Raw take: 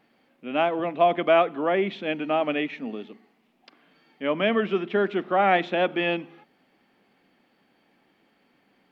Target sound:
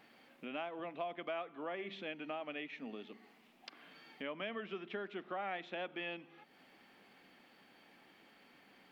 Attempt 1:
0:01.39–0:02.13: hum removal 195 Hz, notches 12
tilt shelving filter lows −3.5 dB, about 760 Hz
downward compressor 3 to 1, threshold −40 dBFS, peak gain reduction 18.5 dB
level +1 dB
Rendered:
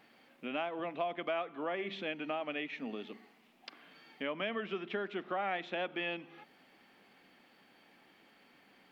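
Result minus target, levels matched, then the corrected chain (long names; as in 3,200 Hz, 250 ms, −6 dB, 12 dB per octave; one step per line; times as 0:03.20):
downward compressor: peak gain reduction −5.5 dB
0:01.39–0:02.13: hum removal 195 Hz, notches 12
tilt shelving filter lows −3.5 dB, about 760 Hz
downward compressor 3 to 1, threshold −48 dBFS, peak gain reduction 23.5 dB
level +1 dB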